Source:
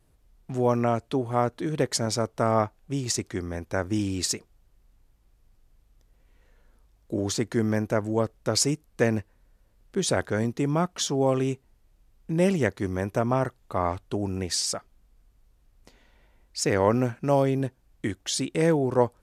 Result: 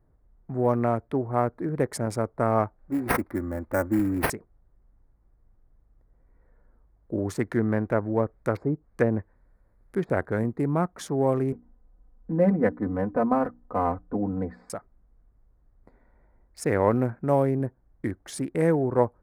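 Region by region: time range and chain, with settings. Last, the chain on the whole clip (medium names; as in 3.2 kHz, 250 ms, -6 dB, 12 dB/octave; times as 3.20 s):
2.79–4.30 s: treble shelf 10 kHz +11.5 dB + comb 3.5 ms, depth 79% + careless resampling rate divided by 6×, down none, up hold
7.39–10.10 s: treble shelf 2 kHz +11.5 dB + low-pass that closes with the level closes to 800 Hz, closed at -17 dBFS
11.52–14.70 s: low-pass 1.5 kHz + hum notches 60/120/180/240/300 Hz + comb 4 ms, depth 95%
whole clip: local Wiener filter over 15 samples; high-order bell 4.5 kHz -12.5 dB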